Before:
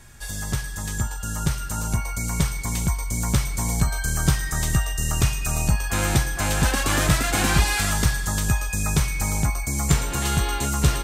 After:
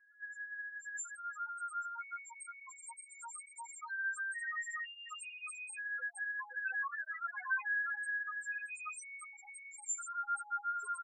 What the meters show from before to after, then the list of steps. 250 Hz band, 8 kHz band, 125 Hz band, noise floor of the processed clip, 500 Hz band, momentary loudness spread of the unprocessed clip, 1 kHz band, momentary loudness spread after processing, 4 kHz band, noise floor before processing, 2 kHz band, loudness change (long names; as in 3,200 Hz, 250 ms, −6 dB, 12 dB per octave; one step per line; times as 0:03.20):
below −40 dB, −20.5 dB, below −40 dB, −57 dBFS, below −35 dB, 8 LU, −12.5 dB, 12 LU, below −25 dB, −31 dBFS, −7.5 dB, −16.5 dB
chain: high-pass filter 610 Hz 12 dB per octave
spectral peaks only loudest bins 1
phaser with its sweep stopped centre 1,500 Hz, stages 4
comb filter 6.5 ms, depth 79%
level −1.5 dB